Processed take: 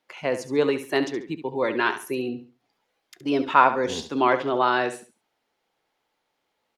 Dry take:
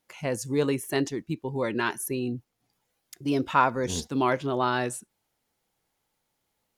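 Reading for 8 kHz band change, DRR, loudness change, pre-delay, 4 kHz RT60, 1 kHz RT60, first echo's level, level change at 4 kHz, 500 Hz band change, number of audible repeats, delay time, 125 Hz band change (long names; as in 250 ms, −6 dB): −6.0 dB, no reverb audible, +4.0 dB, no reverb audible, no reverb audible, no reverb audible, −11.0 dB, +3.5 dB, +4.5 dB, 3, 70 ms, −6.5 dB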